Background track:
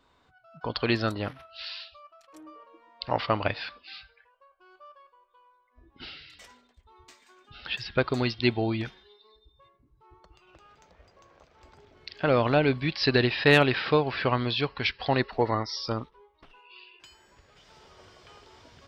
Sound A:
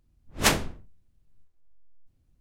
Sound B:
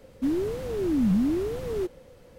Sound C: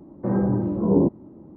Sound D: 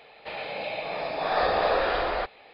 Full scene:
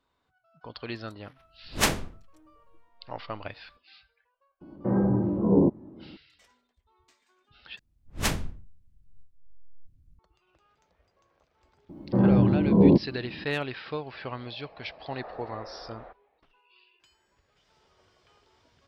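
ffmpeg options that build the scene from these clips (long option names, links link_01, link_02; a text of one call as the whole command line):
ffmpeg -i bed.wav -i cue0.wav -i cue1.wav -i cue2.wav -i cue3.wav -filter_complex "[1:a]asplit=2[link_01][link_02];[3:a]asplit=2[link_03][link_04];[0:a]volume=-11dB[link_05];[link_02]asubboost=boost=8.5:cutoff=240[link_06];[link_04]bass=frequency=250:gain=4,treble=frequency=4000:gain=10[link_07];[4:a]lowpass=1400[link_08];[link_05]asplit=2[link_09][link_10];[link_09]atrim=end=7.794[link_11];[link_06]atrim=end=2.4,asetpts=PTS-STARTPTS,volume=-6.5dB[link_12];[link_10]atrim=start=10.186[link_13];[link_01]atrim=end=2.4,asetpts=PTS-STARTPTS,volume=-2dB,afade=type=in:duration=0.004:curve=hsin,afade=type=out:start_time=2.396:duration=0.004:curve=hsin,adelay=1370[link_14];[link_03]atrim=end=1.56,asetpts=PTS-STARTPTS,volume=-2dB,afade=type=in:duration=0.004:curve=hsin,afade=type=out:start_time=1.556:duration=0.004:curve=hsin,adelay=203301S[link_15];[link_07]atrim=end=1.56,asetpts=PTS-STARTPTS,volume=-0.5dB,afade=type=in:duration=0.004:curve=hsin,afade=type=out:start_time=1.556:duration=0.004:curve=hsin,adelay=11890[link_16];[link_08]atrim=end=2.53,asetpts=PTS-STARTPTS,volume=-18dB,afade=type=in:duration=0.004:curve=hsin,afade=type=out:start_time=2.526:duration=0.004:curve=hsin,adelay=13870[link_17];[link_11][link_12]acrossfade=duration=0.004:curve1=hsin:curve2=hsin[link_18];[link_18][link_13]acrossfade=duration=0.004:curve1=hsin:curve2=hsin[link_19];[link_19][link_14][link_15][link_16][link_17]amix=inputs=5:normalize=0" out.wav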